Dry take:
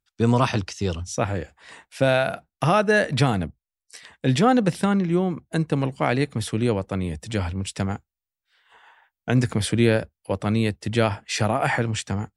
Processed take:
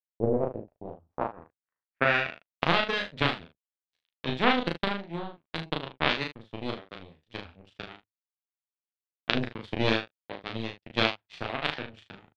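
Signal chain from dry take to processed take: high shelf 4800 Hz -5 dB; notches 50/100 Hz; in parallel at +0.5 dB: compressor, threshold -30 dBFS, peak gain reduction 16 dB; on the sum: power-law curve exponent 3; low-pass sweep 490 Hz -> 3600 Hz, 0.53–2.67; on a send: early reflections 12 ms -10.5 dB, 36 ms -3 dB, 49 ms -17 dB, 75 ms -11.5 dB

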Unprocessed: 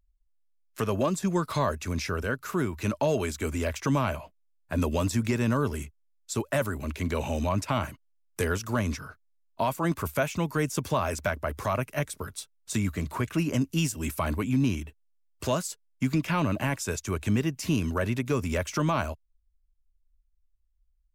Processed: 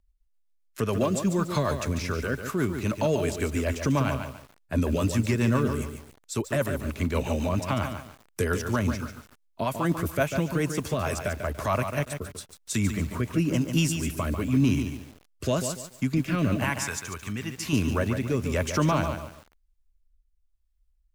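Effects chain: rotary speaker horn 7.5 Hz, later 1 Hz, at 10.42; 16.64–17.73 resonant low shelf 720 Hz -8.5 dB, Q 1.5; lo-fi delay 0.144 s, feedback 35%, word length 8-bit, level -7 dB; gain +3 dB

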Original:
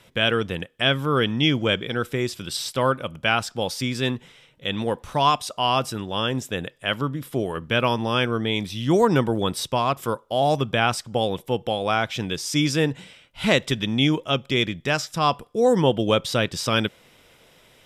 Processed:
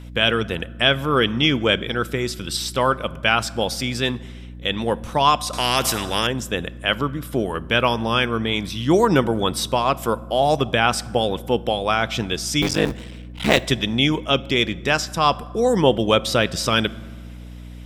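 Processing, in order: 12.62–13.66 cycle switcher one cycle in 3, muted; harmonic-percussive split harmonic -5 dB; hum 60 Hz, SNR 16 dB; on a send at -18 dB: reverb RT60 1.6 s, pre-delay 5 ms; 5.53–6.27 on the sum: spectral compressor 2:1; gain +4.5 dB

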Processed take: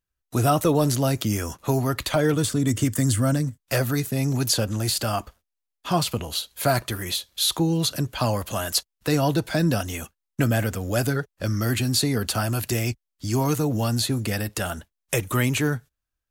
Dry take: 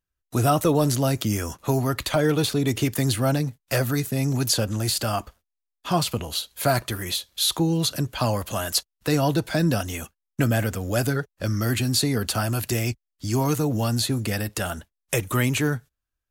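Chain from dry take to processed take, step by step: 2.33–3.58 thirty-one-band EQ 100 Hz +8 dB, 250 Hz +4 dB, 400 Hz -7 dB, 800 Hz -11 dB, 2500 Hz -8 dB, 4000 Hz -8 dB, 8000 Hz +9 dB, 12500 Hz -4 dB

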